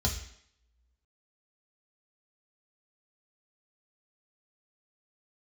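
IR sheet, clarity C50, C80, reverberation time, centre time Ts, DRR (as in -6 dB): 8.5 dB, 11.5 dB, 0.70 s, 19 ms, 0.0 dB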